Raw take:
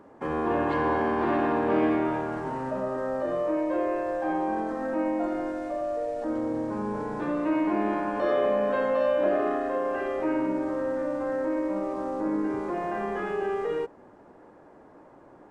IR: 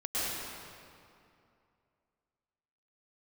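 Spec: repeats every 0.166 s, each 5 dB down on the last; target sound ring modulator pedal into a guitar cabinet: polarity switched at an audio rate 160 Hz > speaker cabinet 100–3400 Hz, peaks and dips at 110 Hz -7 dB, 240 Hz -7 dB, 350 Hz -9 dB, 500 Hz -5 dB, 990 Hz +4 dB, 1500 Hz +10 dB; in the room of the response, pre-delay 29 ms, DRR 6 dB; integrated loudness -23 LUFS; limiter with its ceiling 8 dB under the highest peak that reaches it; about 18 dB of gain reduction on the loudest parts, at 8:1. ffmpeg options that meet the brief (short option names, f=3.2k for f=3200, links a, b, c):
-filter_complex "[0:a]acompressor=threshold=-40dB:ratio=8,alimiter=level_in=14dB:limit=-24dB:level=0:latency=1,volume=-14dB,aecho=1:1:166|332|498|664|830|996|1162:0.562|0.315|0.176|0.0988|0.0553|0.031|0.0173,asplit=2[a][b];[1:a]atrim=start_sample=2205,adelay=29[c];[b][c]afir=irnorm=-1:irlink=0,volume=-14dB[d];[a][d]amix=inputs=2:normalize=0,aeval=exprs='val(0)*sgn(sin(2*PI*160*n/s))':c=same,highpass=100,equalizer=f=110:t=q:w=4:g=-7,equalizer=f=240:t=q:w=4:g=-7,equalizer=f=350:t=q:w=4:g=-9,equalizer=f=500:t=q:w=4:g=-5,equalizer=f=990:t=q:w=4:g=4,equalizer=f=1.5k:t=q:w=4:g=10,lowpass=f=3.4k:w=0.5412,lowpass=f=3.4k:w=1.3066,volume=19.5dB"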